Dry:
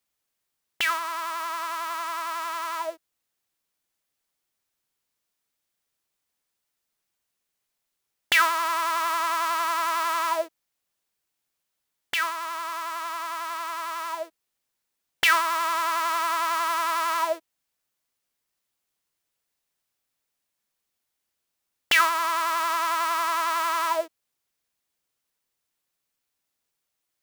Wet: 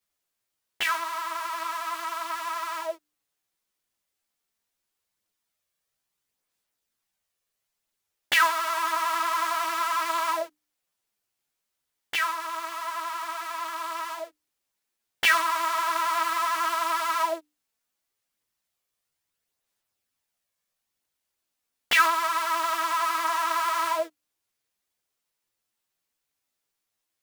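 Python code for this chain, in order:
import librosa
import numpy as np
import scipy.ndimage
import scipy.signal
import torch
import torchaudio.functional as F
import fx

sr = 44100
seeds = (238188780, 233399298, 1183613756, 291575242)

y = fx.hum_notches(x, sr, base_hz=60, count=5)
y = fx.chorus_voices(y, sr, voices=2, hz=0.38, base_ms=14, depth_ms=4.9, mix_pct=55)
y = y * librosa.db_to_amplitude(2.0)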